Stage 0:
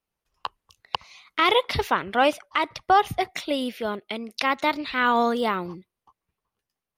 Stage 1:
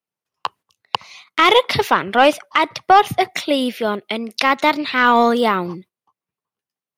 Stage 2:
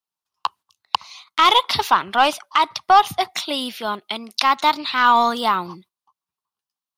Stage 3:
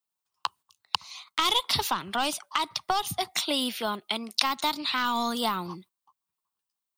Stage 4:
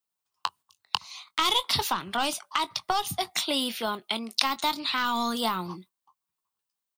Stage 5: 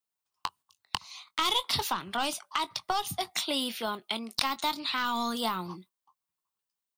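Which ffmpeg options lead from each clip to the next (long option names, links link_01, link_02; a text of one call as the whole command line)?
ffmpeg -i in.wav -af "agate=range=-13dB:threshold=-50dB:ratio=16:detection=peak,highpass=frequency=110:width=0.5412,highpass=frequency=110:width=1.3066,acontrast=56,volume=2dB" out.wav
ffmpeg -i in.wav -af "equalizer=frequency=125:width_type=o:width=1:gain=-9,equalizer=frequency=250:width_type=o:width=1:gain=-5,equalizer=frequency=500:width_type=o:width=1:gain=-12,equalizer=frequency=1000:width_type=o:width=1:gain=6,equalizer=frequency=2000:width_type=o:width=1:gain=-8,equalizer=frequency=4000:width_type=o:width=1:gain=4" out.wav
ffmpeg -i in.wav -filter_complex "[0:a]acrossover=split=280|3700[link_01][link_02][link_03];[link_02]acompressor=threshold=-25dB:ratio=6[link_04];[link_03]aexciter=amount=1.4:drive=5.8:freq=7500[link_05];[link_01][link_04][link_05]amix=inputs=3:normalize=0,volume=-1.5dB" out.wav
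ffmpeg -i in.wav -filter_complex "[0:a]asplit=2[link_01][link_02];[link_02]adelay=22,volume=-13dB[link_03];[link_01][link_03]amix=inputs=2:normalize=0" out.wav
ffmpeg -i in.wav -af "aeval=exprs='clip(val(0),-1,0.15)':channel_layout=same,volume=-3dB" out.wav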